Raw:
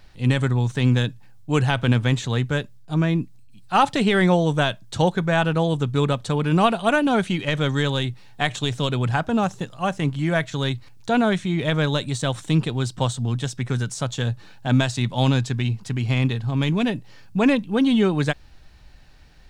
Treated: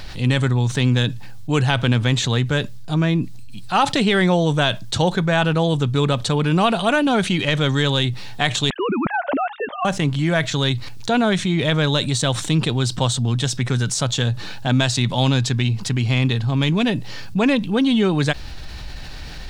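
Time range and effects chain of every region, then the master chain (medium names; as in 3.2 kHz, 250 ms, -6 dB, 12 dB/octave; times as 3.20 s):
8.70–9.85 s: formants replaced by sine waves + distance through air 300 m + compression 3:1, threshold -24 dBFS
whole clip: peaking EQ 4.1 kHz +4.5 dB 1.2 oct; level flattener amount 50%; trim -1 dB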